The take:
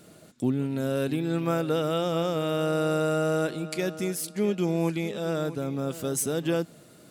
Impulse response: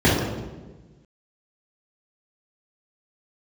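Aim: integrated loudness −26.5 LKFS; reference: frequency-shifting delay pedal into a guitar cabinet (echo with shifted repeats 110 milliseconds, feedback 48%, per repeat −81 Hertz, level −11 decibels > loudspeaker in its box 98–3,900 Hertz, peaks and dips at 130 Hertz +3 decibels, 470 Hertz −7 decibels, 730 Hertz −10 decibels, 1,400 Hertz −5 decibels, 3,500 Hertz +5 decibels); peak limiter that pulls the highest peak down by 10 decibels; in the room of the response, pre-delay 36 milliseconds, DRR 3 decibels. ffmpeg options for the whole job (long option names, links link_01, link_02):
-filter_complex "[0:a]alimiter=limit=-23dB:level=0:latency=1,asplit=2[link_01][link_02];[1:a]atrim=start_sample=2205,adelay=36[link_03];[link_02][link_03]afir=irnorm=-1:irlink=0,volume=-25.5dB[link_04];[link_01][link_04]amix=inputs=2:normalize=0,asplit=6[link_05][link_06][link_07][link_08][link_09][link_10];[link_06]adelay=110,afreqshift=-81,volume=-11dB[link_11];[link_07]adelay=220,afreqshift=-162,volume=-17.4dB[link_12];[link_08]adelay=330,afreqshift=-243,volume=-23.8dB[link_13];[link_09]adelay=440,afreqshift=-324,volume=-30.1dB[link_14];[link_10]adelay=550,afreqshift=-405,volume=-36.5dB[link_15];[link_05][link_11][link_12][link_13][link_14][link_15]amix=inputs=6:normalize=0,highpass=98,equalizer=frequency=130:width_type=q:width=4:gain=3,equalizer=frequency=470:width_type=q:width=4:gain=-7,equalizer=frequency=730:width_type=q:width=4:gain=-10,equalizer=frequency=1400:width_type=q:width=4:gain=-5,equalizer=frequency=3500:width_type=q:width=4:gain=5,lowpass=frequency=3900:width=0.5412,lowpass=frequency=3900:width=1.3066"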